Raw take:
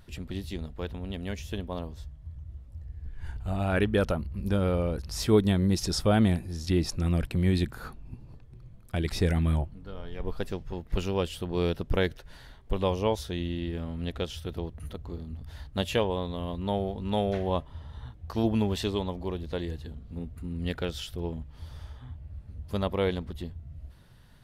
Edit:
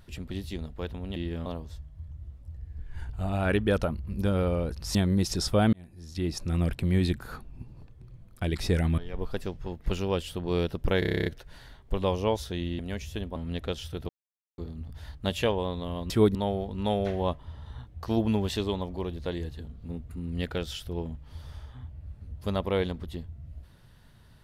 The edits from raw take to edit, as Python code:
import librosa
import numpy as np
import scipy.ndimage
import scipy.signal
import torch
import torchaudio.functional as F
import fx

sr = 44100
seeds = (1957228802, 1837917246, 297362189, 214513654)

y = fx.edit(x, sr, fx.swap(start_s=1.16, length_s=0.57, other_s=13.58, other_length_s=0.3),
    fx.move(start_s=5.22, length_s=0.25, to_s=16.62),
    fx.fade_in_span(start_s=6.25, length_s=0.88),
    fx.cut(start_s=9.5, length_s=0.54),
    fx.stutter(start_s=12.05, slice_s=0.03, count=10),
    fx.silence(start_s=14.61, length_s=0.49), tone=tone)